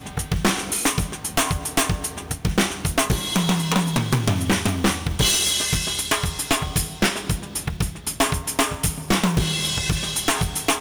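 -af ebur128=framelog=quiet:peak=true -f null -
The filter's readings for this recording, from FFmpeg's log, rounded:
Integrated loudness:
  I:         -21.9 LUFS
  Threshold: -31.9 LUFS
Loudness range:
  LRA:         2.4 LU
  Threshold: -41.8 LUFS
  LRA low:   -23.0 LUFS
  LRA high:  -20.6 LUFS
True peak:
  Peak:       -7.1 dBFS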